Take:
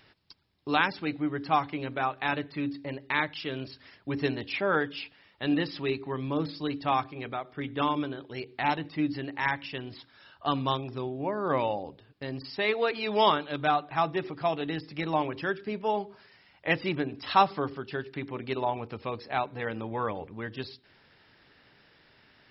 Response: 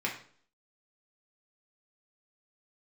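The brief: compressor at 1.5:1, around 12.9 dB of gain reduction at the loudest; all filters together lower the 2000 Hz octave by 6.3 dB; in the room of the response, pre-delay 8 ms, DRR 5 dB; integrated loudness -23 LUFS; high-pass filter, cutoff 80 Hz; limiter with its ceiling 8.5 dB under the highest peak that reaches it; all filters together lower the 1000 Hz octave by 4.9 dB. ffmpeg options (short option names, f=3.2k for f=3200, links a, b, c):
-filter_complex "[0:a]highpass=80,equalizer=f=1k:t=o:g=-5,equalizer=f=2k:t=o:g=-6.5,acompressor=threshold=-59dB:ratio=1.5,alimiter=level_in=10dB:limit=-24dB:level=0:latency=1,volume=-10dB,asplit=2[a][b];[1:a]atrim=start_sample=2205,adelay=8[c];[b][c]afir=irnorm=-1:irlink=0,volume=-11.5dB[d];[a][d]amix=inputs=2:normalize=0,volume=22.5dB"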